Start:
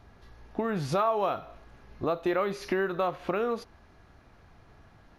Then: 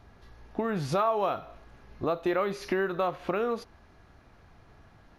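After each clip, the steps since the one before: nothing audible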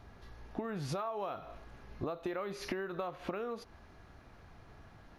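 compressor 12:1, threshold -34 dBFS, peak gain reduction 13 dB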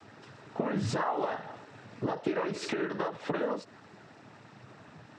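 noise vocoder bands 12; ending taper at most 210 dB/s; gain +7 dB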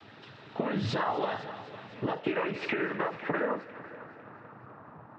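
low-pass sweep 3600 Hz -> 1100 Hz, 1.62–4.94; multi-head echo 0.251 s, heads first and second, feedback 49%, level -19 dB

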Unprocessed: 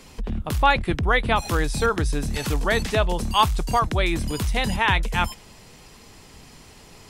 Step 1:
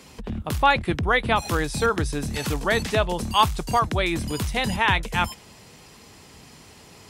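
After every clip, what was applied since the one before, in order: HPF 67 Hz 12 dB/oct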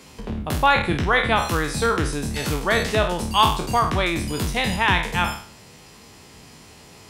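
spectral trails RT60 0.50 s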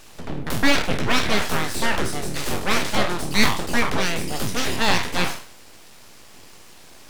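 full-wave rectifier; gain +2 dB

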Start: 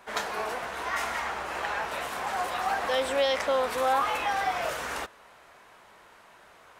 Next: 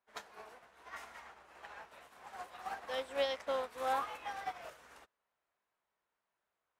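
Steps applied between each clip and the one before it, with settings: upward expander 2.5:1, over -40 dBFS; gain -7 dB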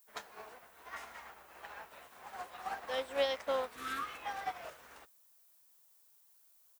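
spectral repair 3.78–4.15, 430–1100 Hz; downsampling 32000 Hz; added noise violet -68 dBFS; gain +2 dB

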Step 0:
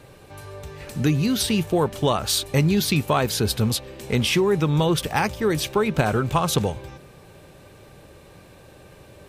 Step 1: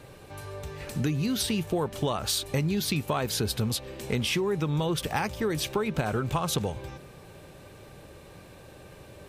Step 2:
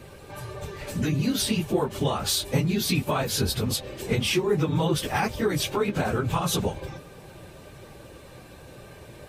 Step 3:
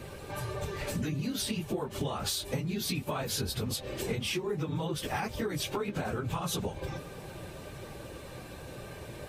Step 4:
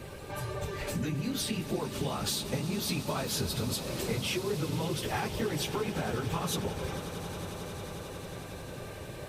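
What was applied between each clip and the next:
compressor 3:1, threshold -25 dBFS, peak gain reduction 8 dB; gain -1 dB
phase scrambler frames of 50 ms; gain +3 dB
compressor, threshold -32 dBFS, peak gain reduction 13.5 dB; gain +1.5 dB
swelling echo 90 ms, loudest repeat 8, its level -17.5 dB

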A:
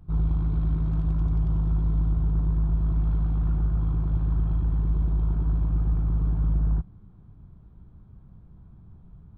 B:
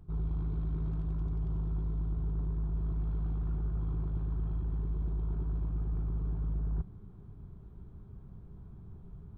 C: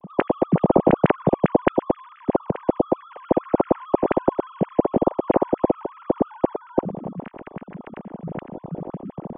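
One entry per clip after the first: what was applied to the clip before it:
bell 400 Hz +9.5 dB 0.25 oct; reverse; compressor 6:1, threshold -31 dBFS, peak gain reduction 11 dB; reverse
sine-wave speech; dynamic EQ 500 Hz, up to +7 dB, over -41 dBFS, Q 0.76; gain +6 dB

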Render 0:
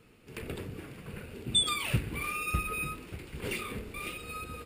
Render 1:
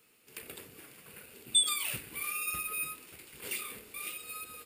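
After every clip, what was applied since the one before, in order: RIAA curve recording; gain -7 dB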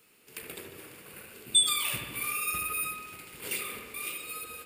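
dark delay 74 ms, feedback 67%, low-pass 2600 Hz, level -4.5 dB; gain +3 dB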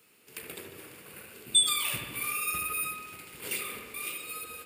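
HPF 51 Hz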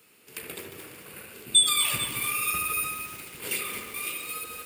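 lo-fi delay 0.223 s, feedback 55%, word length 7-bit, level -8 dB; gain +3.5 dB

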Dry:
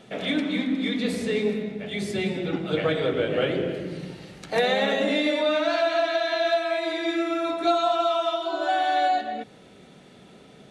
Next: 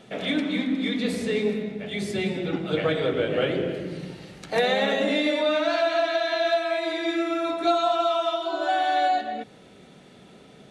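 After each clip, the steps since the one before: nothing audible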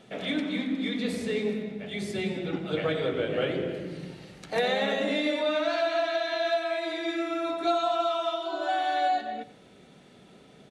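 echo 93 ms -15.5 dB; gain -4 dB

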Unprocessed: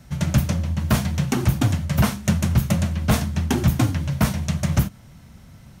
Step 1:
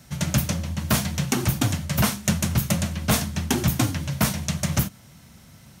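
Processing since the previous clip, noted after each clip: HPF 110 Hz 6 dB/oct; high shelf 2900 Hz +7.5 dB; gain -1.5 dB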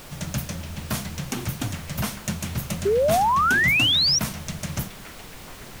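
added noise pink -35 dBFS; delay with a stepping band-pass 0.421 s, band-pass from 2800 Hz, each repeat -0.7 oct, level -7 dB; painted sound rise, 2.85–4.19, 380–5900 Hz -13 dBFS; gain -6.5 dB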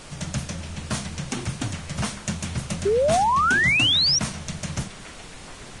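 Vorbis 32 kbps 22050 Hz

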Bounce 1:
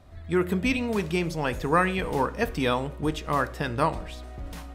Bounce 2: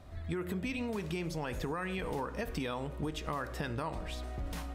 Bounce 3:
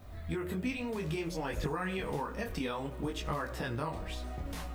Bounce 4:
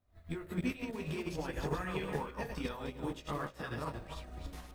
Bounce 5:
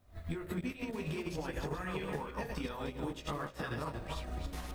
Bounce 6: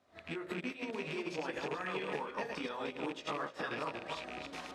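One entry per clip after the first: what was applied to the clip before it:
limiter -19 dBFS, peak gain reduction 10 dB; compressor, threshold -33 dBFS, peak gain reduction 9 dB
added noise violet -72 dBFS; detuned doubles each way 21 cents; gain +4.5 dB
regenerating reverse delay 0.154 s, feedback 42%, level -3 dB; upward expander 2.5:1, over -48 dBFS
compressor 5:1, threshold -48 dBFS, peak gain reduction 16 dB; gain +11.5 dB
rattling part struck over -40 dBFS, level -34 dBFS; BPF 290–6000 Hz; gain +2 dB

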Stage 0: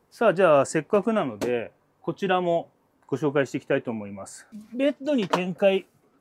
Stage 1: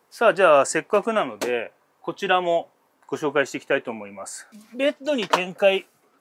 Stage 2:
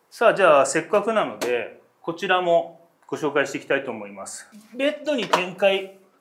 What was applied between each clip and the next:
HPF 810 Hz 6 dB/oct; gain +7 dB
shoebox room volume 490 m³, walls furnished, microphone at 0.66 m

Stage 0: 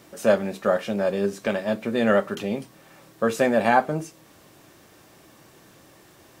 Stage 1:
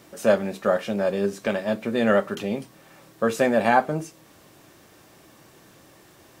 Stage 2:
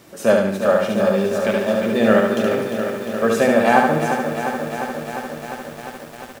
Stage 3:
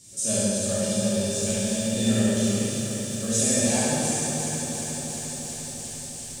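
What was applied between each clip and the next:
nothing audible
feedback echo 72 ms, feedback 44%, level -3.5 dB; lo-fi delay 0.351 s, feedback 80%, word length 7-bit, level -8 dB; gain +3 dB
EQ curve 110 Hz 0 dB, 250 Hz -10 dB, 1300 Hz -24 dB, 8300 Hz +15 dB, 14000 Hz -10 dB; plate-style reverb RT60 2.7 s, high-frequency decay 0.85×, DRR -9 dB; gain -5.5 dB

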